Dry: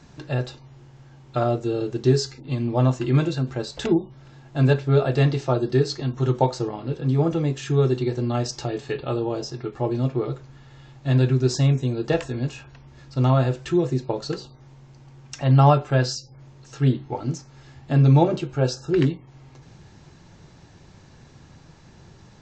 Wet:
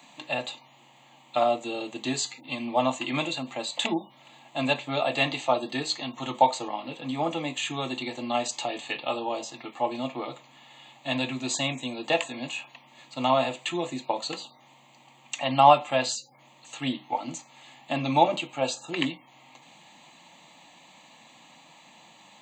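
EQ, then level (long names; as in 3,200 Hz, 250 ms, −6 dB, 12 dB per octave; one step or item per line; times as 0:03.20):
high-pass filter 260 Hz 24 dB per octave
high-shelf EQ 2,800 Hz +11 dB
phaser with its sweep stopped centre 1,500 Hz, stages 6
+3.5 dB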